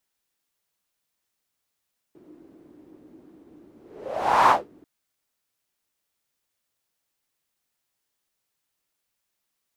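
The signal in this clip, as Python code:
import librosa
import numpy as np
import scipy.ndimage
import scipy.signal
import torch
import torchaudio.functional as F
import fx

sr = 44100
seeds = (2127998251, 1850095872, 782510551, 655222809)

y = fx.whoosh(sr, seeds[0], length_s=2.69, peak_s=2.34, rise_s=0.78, fall_s=0.21, ends_hz=310.0, peak_hz=1000.0, q=5.3, swell_db=35.5)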